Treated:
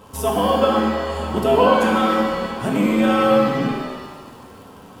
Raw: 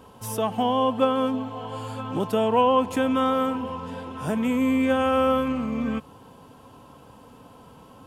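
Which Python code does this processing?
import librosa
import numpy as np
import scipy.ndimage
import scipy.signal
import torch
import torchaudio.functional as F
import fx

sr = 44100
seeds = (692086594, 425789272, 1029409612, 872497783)

y = fx.stretch_grains(x, sr, factor=0.62, grain_ms=20.0)
y = fx.dmg_crackle(y, sr, seeds[0], per_s=140.0, level_db=-45.0)
y = fx.rev_shimmer(y, sr, seeds[1], rt60_s=1.3, semitones=7, shimmer_db=-8, drr_db=0.0)
y = y * 10.0 ** (4.0 / 20.0)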